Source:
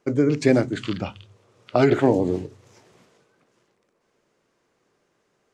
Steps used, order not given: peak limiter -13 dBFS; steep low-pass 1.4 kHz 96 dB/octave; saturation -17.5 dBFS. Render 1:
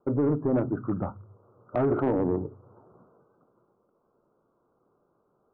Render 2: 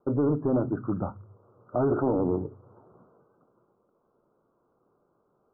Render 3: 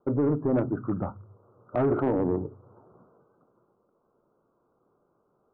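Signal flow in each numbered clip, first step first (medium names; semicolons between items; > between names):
peak limiter > steep low-pass > saturation; peak limiter > saturation > steep low-pass; steep low-pass > peak limiter > saturation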